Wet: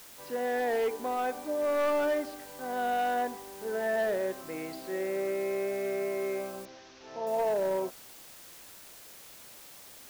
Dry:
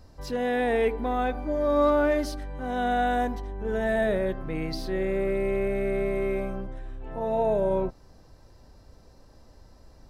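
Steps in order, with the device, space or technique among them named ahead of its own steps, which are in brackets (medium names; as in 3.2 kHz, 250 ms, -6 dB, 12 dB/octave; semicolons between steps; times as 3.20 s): aircraft radio (band-pass 350–2500 Hz; hard clipper -22 dBFS, distortion -16 dB; white noise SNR 18 dB); 6.65–7.27 s: elliptic low-pass 6 kHz, stop band 40 dB; trim -2.5 dB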